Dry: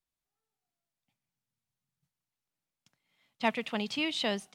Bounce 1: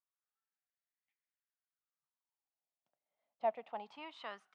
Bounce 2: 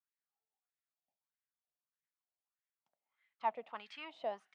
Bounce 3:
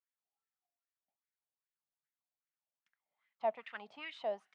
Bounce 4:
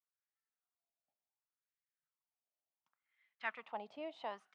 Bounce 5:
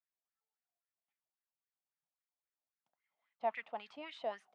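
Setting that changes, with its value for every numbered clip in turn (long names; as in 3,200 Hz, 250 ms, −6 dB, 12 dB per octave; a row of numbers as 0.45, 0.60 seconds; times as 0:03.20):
LFO wah, speed: 0.24, 1.6, 2.5, 0.69, 3.7 Hertz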